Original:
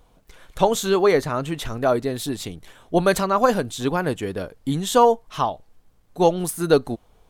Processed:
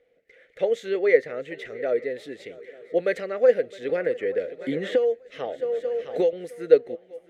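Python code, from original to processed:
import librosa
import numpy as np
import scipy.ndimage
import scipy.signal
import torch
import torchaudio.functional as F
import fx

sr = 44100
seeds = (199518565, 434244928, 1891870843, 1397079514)

y = fx.double_bandpass(x, sr, hz=990.0, octaves=2.0)
y = fx.echo_swing(y, sr, ms=883, ratio=3, feedback_pct=47, wet_db=-21.5)
y = fx.band_squash(y, sr, depth_pct=100, at=(3.89, 6.33))
y = y * librosa.db_to_amplitude(5.0)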